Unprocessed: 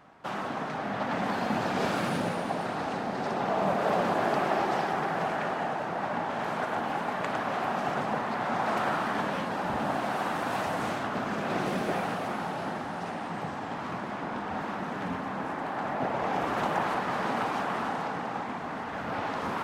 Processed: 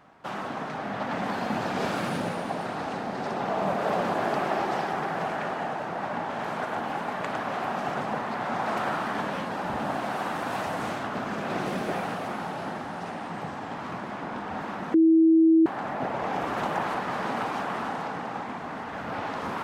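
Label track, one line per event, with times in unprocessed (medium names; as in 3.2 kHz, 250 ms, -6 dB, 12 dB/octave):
14.940000	15.660000	bleep 324 Hz -14.5 dBFS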